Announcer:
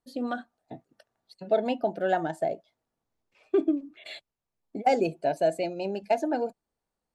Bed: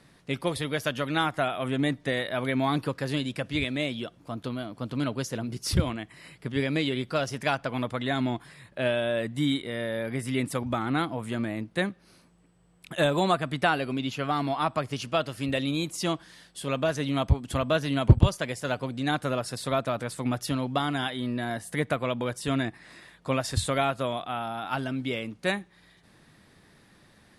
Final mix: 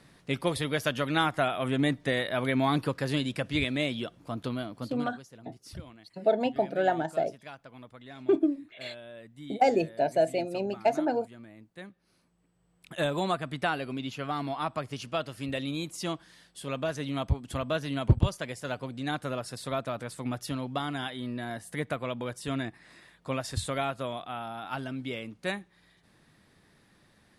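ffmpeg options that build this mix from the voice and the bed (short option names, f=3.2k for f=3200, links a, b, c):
-filter_complex "[0:a]adelay=4750,volume=0dB[a];[1:a]volume=13.5dB,afade=t=out:st=4.6:d=0.55:silence=0.11885,afade=t=in:st=11.77:d=1.22:silence=0.211349[b];[a][b]amix=inputs=2:normalize=0"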